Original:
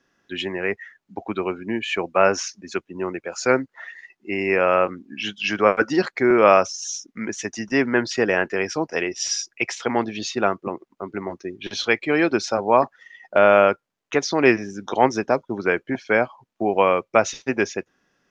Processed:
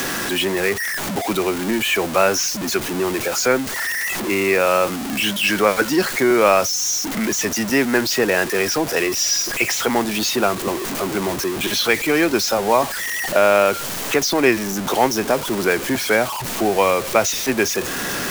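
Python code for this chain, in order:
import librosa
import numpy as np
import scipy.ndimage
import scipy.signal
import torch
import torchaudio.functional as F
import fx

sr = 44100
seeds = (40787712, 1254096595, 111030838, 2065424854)

y = x + 0.5 * 10.0 ** (-23.5 / 20.0) * np.sign(x)
y = fx.high_shelf(y, sr, hz=5600.0, db=8.5)
y = fx.band_squash(y, sr, depth_pct=40)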